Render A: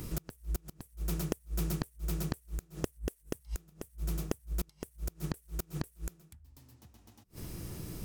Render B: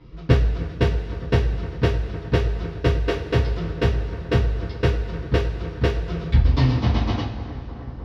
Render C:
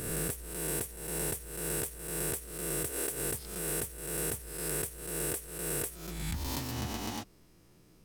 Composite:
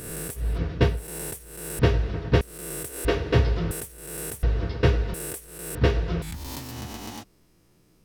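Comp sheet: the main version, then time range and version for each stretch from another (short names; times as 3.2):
C
0.47–0.94 from B, crossfade 0.24 s
1.79–2.41 from B
3.05–3.71 from B
4.43–5.14 from B
5.75–6.22 from B
not used: A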